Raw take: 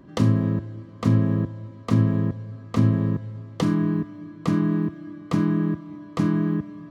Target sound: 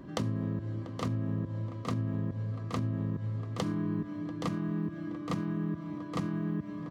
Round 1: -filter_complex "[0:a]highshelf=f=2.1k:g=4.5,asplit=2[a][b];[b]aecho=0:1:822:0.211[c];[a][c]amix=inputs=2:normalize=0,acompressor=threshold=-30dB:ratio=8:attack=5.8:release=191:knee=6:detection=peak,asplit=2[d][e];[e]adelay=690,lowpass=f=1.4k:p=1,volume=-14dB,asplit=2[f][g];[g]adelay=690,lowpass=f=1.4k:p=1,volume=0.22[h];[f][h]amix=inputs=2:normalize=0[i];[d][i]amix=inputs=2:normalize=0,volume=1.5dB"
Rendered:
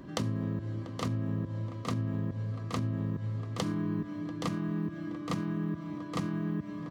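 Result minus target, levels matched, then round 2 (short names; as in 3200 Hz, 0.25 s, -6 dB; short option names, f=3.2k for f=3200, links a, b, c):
4000 Hz band +3.0 dB
-filter_complex "[0:a]asplit=2[a][b];[b]aecho=0:1:822:0.211[c];[a][c]amix=inputs=2:normalize=0,acompressor=threshold=-30dB:ratio=8:attack=5.8:release=191:knee=6:detection=peak,asplit=2[d][e];[e]adelay=690,lowpass=f=1.4k:p=1,volume=-14dB,asplit=2[f][g];[g]adelay=690,lowpass=f=1.4k:p=1,volume=0.22[h];[f][h]amix=inputs=2:normalize=0[i];[d][i]amix=inputs=2:normalize=0,volume=1.5dB"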